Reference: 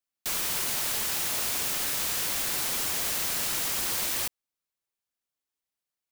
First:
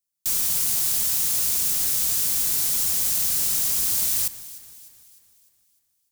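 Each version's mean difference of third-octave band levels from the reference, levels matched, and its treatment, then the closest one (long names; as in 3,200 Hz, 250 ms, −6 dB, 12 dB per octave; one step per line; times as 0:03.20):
7.0 dB: bass and treble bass +11 dB, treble +15 dB
on a send: delay that swaps between a low-pass and a high-pass 151 ms, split 2,300 Hz, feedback 69%, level −14 dB
on the sum: level −7 dB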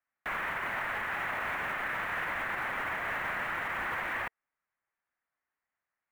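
10.5 dB: drawn EQ curve 450 Hz 0 dB, 650 Hz +6 dB, 1,900 Hz +12 dB, 4,800 Hz −26 dB
brickwall limiter −25.5 dBFS, peak gain reduction 8 dB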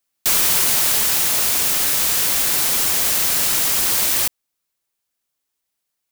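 2.0 dB: high-shelf EQ 5,700 Hz +4 dB
speech leveller 2 s
level +8.5 dB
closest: third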